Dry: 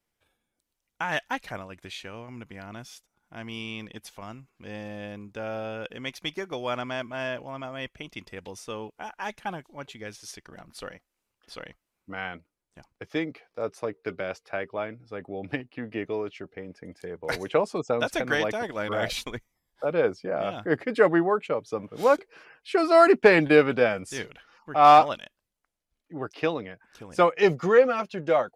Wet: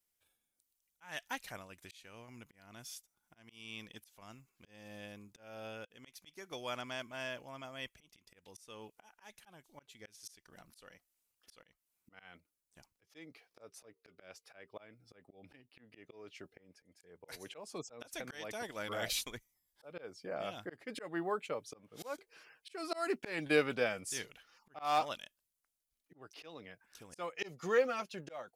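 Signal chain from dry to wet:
first-order pre-emphasis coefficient 0.8
volume swells 296 ms
level +1.5 dB

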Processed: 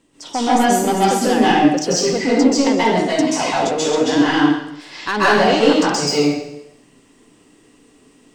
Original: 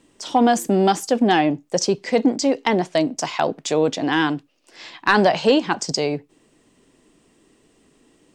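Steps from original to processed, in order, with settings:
soft clipping −11 dBFS, distortion −17 dB
dense smooth reverb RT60 0.82 s, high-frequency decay 1×, pre-delay 120 ms, DRR −9 dB
level −3 dB

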